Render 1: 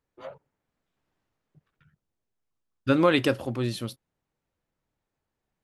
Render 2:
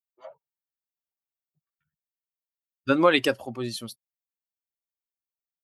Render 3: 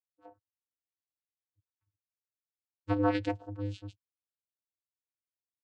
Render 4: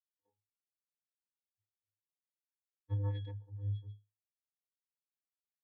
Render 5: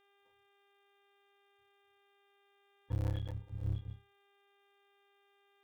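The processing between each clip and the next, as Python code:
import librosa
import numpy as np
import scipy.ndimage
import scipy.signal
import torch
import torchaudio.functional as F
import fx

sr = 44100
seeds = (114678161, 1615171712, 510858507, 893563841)

y1 = fx.bin_expand(x, sr, power=1.5)
y1 = fx.highpass(y1, sr, hz=410.0, slope=6)
y1 = y1 * 10.0 ** (5.0 / 20.0)
y2 = fx.vocoder(y1, sr, bands=8, carrier='square', carrier_hz=101.0)
y2 = y2 * 10.0 ** (-7.5 / 20.0)
y3 = fx.octave_resonator(y2, sr, note='G#', decay_s=0.26)
y3 = fx.band_widen(y3, sr, depth_pct=40)
y3 = y3 * 10.0 ** (2.5 / 20.0)
y4 = fx.cycle_switch(y3, sr, every=3, mode='muted')
y4 = fx.dmg_buzz(y4, sr, base_hz=400.0, harmonics=9, level_db=-76.0, tilt_db=-3, odd_only=False)
y4 = 10.0 ** (-32.0 / 20.0) * np.tanh(y4 / 10.0 ** (-32.0 / 20.0))
y4 = y4 * 10.0 ** (4.5 / 20.0)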